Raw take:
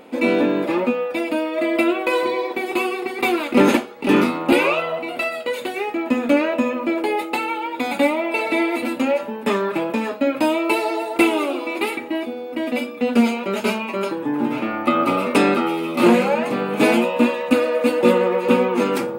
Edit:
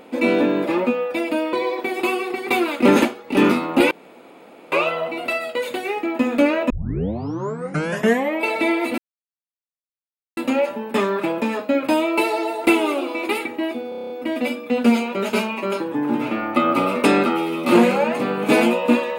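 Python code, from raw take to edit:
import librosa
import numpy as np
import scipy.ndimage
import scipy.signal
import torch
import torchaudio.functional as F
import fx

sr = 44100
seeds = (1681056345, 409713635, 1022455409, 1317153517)

y = fx.edit(x, sr, fx.cut(start_s=1.53, length_s=0.72),
    fx.insert_room_tone(at_s=4.63, length_s=0.81),
    fx.tape_start(start_s=6.61, length_s=1.75),
    fx.insert_silence(at_s=8.89, length_s=1.39),
    fx.stutter(start_s=12.41, slice_s=0.03, count=8), tone=tone)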